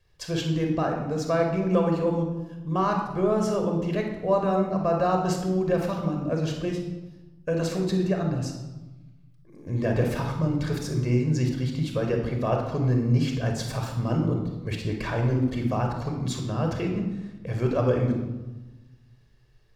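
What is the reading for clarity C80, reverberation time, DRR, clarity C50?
7.5 dB, 1.1 s, 2.0 dB, 4.5 dB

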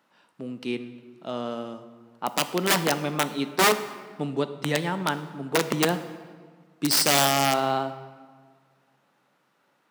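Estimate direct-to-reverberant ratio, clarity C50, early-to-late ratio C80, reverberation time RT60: 11.0 dB, 12.5 dB, 14.0 dB, 1.7 s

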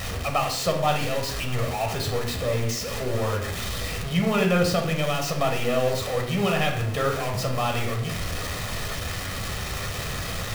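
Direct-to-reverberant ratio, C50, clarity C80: 2.0 dB, 7.0 dB, 10.5 dB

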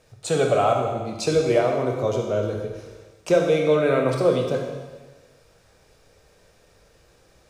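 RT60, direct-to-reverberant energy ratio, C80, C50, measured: 1.3 s, 1.0 dB, 5.0 dB, 3.0 dB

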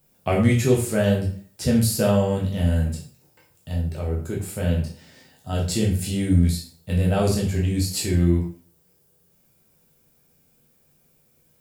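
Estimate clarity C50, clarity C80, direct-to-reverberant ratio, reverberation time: 6.5 dB, 10.5 dB, −3.0 dB, 0.45 s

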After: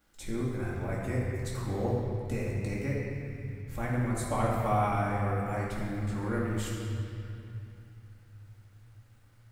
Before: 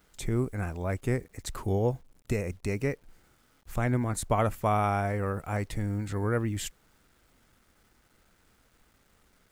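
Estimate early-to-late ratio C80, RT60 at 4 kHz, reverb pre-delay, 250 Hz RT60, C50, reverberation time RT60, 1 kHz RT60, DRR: 0.5 dB, 2.2 s, 4 ms, 4.1 s, −1.0 dB, 2.7 s, 2.7 s, −6.5 dB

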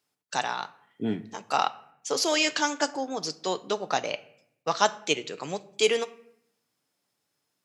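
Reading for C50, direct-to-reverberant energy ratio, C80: 18.5 dB, 11.5 dB, 21.0 dB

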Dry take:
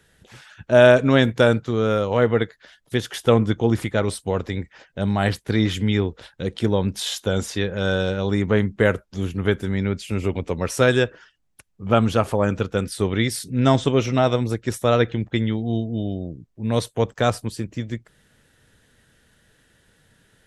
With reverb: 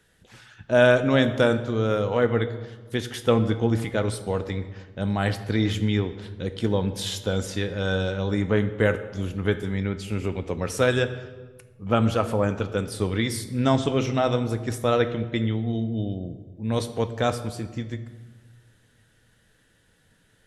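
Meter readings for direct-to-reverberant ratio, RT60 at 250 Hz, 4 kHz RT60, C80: 9.0 dB, 1.8 s, 0.95 s, 14.0 dB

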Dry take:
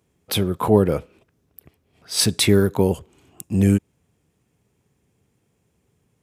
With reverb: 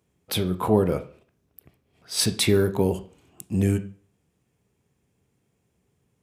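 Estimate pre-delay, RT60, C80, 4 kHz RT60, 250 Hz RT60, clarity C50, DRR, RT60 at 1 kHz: 14 ms, 0.40 s, 19.5 dB, 0.40 s, 0.40 s, 14.5 dB, 9.0 dB, 0.40 s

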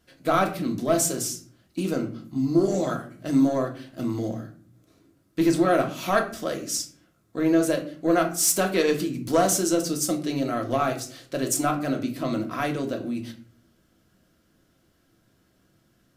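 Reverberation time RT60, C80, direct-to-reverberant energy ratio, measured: 0.45 s, 15.5 dB, 2.0 dB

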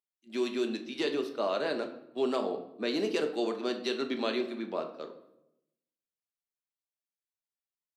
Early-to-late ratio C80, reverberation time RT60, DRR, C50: 13.5 dB, 0.85 s, 5.0 dB, 10.5 dB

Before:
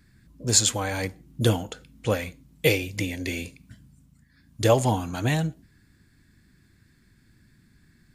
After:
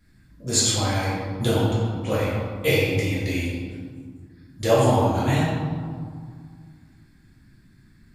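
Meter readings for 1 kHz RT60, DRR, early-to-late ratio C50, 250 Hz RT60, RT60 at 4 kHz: 2.2 s, −9.0 dB, −1.5 dB, 2.7 s, 1.0 s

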